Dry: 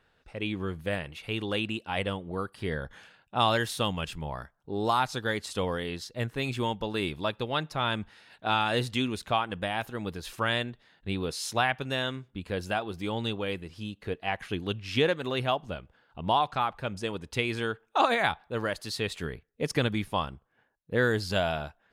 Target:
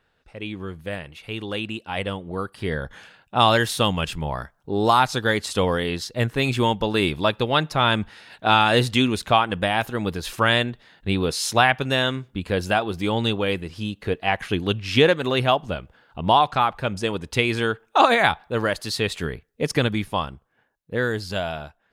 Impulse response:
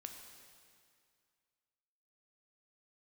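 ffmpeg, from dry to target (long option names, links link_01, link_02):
-af "dynaudnorm=framelen=390:gausssize=13:maxgain=11.5dB"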